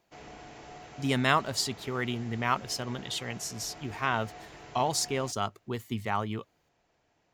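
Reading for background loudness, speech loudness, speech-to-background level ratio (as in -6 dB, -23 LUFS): -48.0 LUFS, -31.5 LUFS, 16.5 dB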